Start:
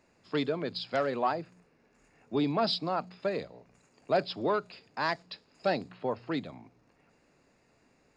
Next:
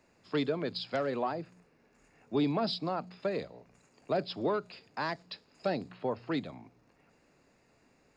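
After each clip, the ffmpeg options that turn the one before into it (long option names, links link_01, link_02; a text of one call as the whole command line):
ffmpeg -i in.wav -filter_complex "[0:a]acrossover=split=460[link_01][link_02];[link_02]acompressor=threshold=-33dB:ratio=3[link_03];[link_01][link_03]amix=inputs=2:normalize=0" out.wav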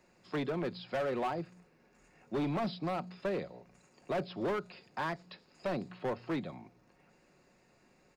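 ffmpeg -i in.wav -filter_complex "[0:a]acrossover=split=2800[link_01][link_02];[link_02]acompressor=threshold=-57dB:ratio=4:attack=1:release=60[link_03];[link_01][link_03]amix=inputs=2:normalize=0,aecho=1:1:5.5:0.35,volume=29.5dB,asoftclip=hard,volume=-29.5dB" out.wav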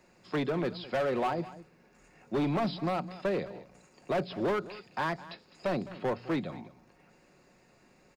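ffmpeg -i in.wav -af "aecho=1:1:210:0.141,volume=4dB" out.wav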